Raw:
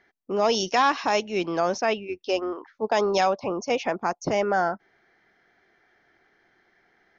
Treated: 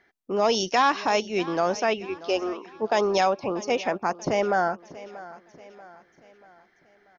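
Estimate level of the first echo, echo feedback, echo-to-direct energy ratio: -18.0 dB, 47%, -17.0 dB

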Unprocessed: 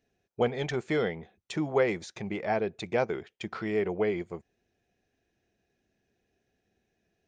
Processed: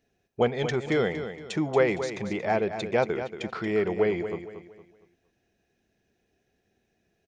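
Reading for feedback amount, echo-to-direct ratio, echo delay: 35%, -9.5 dB, 231 ms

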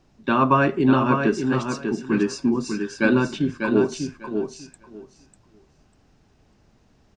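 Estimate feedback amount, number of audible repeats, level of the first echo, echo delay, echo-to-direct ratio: 17%, 2, -6.0 dB, 596 ms, -6.0 dB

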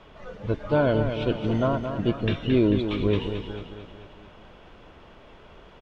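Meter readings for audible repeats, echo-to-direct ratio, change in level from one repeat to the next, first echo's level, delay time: 5, -6.5 dB, -5.5 dB, -8.0 dB, 221 ms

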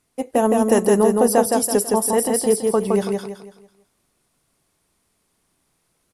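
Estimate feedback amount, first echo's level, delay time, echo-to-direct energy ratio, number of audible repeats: 36%, -3.0 dB, 165 ms, -2.5 dB, 4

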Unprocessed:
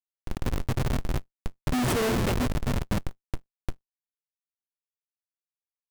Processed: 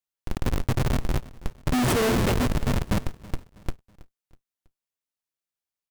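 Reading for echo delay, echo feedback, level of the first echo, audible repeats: 324 ms, 42%, -20.0 dB, 2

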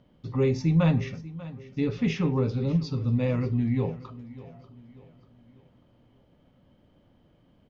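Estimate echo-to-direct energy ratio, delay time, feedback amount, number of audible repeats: -16.5 dB, 591 ms, 43%, 3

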